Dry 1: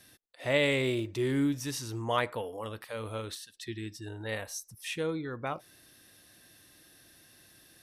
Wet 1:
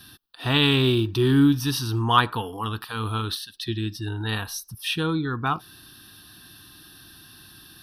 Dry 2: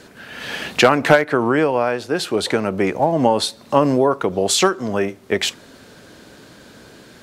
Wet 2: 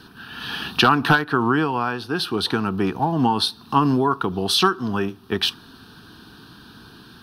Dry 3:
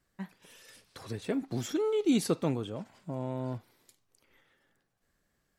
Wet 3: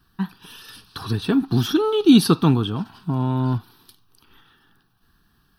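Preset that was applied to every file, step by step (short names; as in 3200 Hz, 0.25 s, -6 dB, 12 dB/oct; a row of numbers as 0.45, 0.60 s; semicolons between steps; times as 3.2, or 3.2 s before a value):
fixed phaser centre 2100 Hz, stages 6; normalise peaks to -3 dBFS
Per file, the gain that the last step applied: +13.5, +2.0, +16.5 dB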